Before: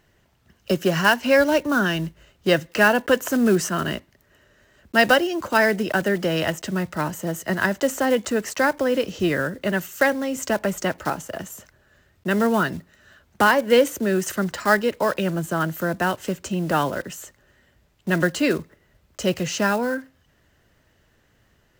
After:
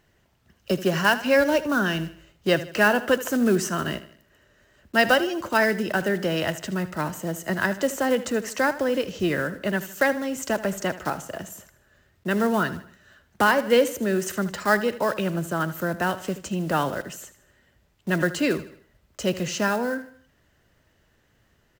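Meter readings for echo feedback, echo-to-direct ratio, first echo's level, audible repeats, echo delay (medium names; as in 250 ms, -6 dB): 43%, -14.0 dB, -15.0 dB, 3, 77 ms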